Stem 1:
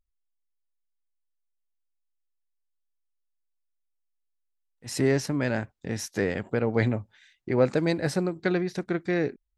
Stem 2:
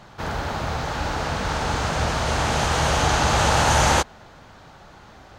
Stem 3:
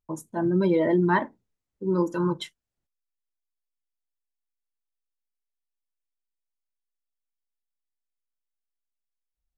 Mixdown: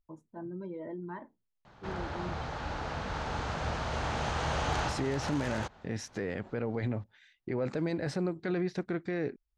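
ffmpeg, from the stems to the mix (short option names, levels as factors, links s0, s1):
-filter_complex "[0:a]alimiter=limit=0.0891:level=0:latency=1:release=22,volume=0.75,asplit=2[s0][s1];[1:a]aeval=exprs='(mod(2.82*val(0)+1,2)-1)/2.82':c=same,adelay=1650,volume=0.299[s2];[2:a]highshelf=f=2800:g=-11,acompressor=threshold=0.0708:ratio=6,volume=0.2[s3];[s1]apad=whole_len=310317[s4];[s2][s4]sidechaincompress=threshold=0.00794:ratio=6:attack=38:release=137[s5];[s0][s5][s3]amix=inputs=3:normalize=0,lowpass=8200,highshelf=f=6300:g=-10.5"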